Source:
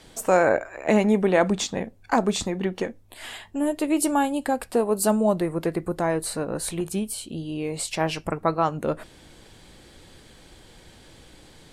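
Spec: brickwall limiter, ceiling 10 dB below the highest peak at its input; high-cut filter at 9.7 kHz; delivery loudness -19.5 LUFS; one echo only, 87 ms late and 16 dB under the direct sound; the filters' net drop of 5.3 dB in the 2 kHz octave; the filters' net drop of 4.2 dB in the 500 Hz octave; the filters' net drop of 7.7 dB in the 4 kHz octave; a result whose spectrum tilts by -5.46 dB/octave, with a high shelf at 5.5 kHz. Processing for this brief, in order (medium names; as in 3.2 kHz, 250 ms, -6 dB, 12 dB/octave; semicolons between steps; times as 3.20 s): low-pass 9.7 kHz; peaking EQ 500 Hz -5 dB; peaking EQ 2 kHz -5 dB; peaking EQ 4 kHz -6.5 dB; treble shelf 5.5 kHz -4 dB; peak limiter -19.5 dBFS; delay 87 ms -16 dB; trim +11.5 dB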